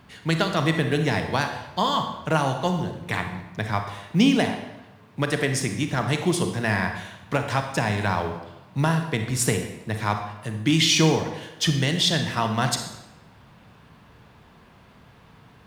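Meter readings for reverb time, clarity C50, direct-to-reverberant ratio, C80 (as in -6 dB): 1.0 s, 7.0 dB, 5.5 dB, 9.5 dB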